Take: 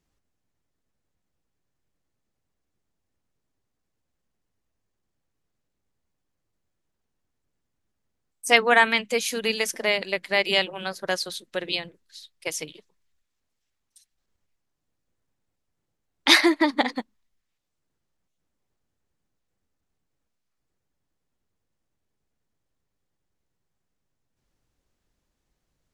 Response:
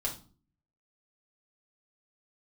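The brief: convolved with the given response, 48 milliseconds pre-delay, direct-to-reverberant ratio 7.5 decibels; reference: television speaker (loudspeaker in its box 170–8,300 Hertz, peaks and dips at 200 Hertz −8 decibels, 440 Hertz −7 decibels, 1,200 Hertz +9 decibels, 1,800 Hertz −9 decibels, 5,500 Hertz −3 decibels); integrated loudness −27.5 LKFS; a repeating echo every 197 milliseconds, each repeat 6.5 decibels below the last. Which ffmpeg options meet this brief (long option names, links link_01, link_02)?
-filter_complex "[0:a]aecho=1:1:197|394|591|788|985|1182:0.473|0.222|0.105|0.0491|0.0231|0.0109,asplit=2[link_01][link_02];[1:a]atrim=start_sample=2205,adelay=48[link_03];[link_02][link_03]afir=irnorm=-1:irlink=0,volume=-10.5dB[link_04];[link_01][link_04]amix=inputs=2:normalize=0,highpass=frequency=170:width=0.5412,highpass=frequency=170:width=1.3066,equalizer=frequency=200:width_type=q:width=4:gain=-8,equalizer=frequency=440:width_type=q:width=4:gain=-7,equalizer=frequency=1200:width_type=q:width=4:gain=9,equalizer=frequency=1800:width_type=q:width=4:gain=-9,equalizer=frequency=5500:width_type=q:width=4:gain=-3,lowpass=frequency=8300:width=0.5412,lowpass=frequency=8300:width=1.3066,volume=-5dB"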